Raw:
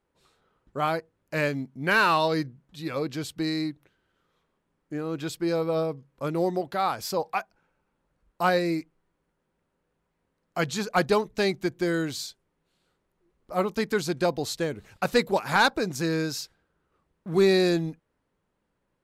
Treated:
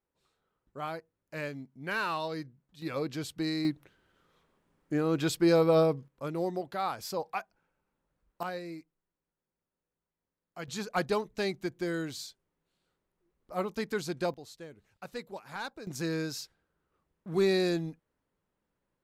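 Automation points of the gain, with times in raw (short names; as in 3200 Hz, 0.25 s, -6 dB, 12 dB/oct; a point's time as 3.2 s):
-11 dB
from 2.82 s -4 dB
from 3.65 s +3 dB
from 6.08 s -6.5 dB
from 8.43 s -15 dB
from 10.68 s -7 dB
from 14.34 s -18 dB
from 15.87 s -6 dB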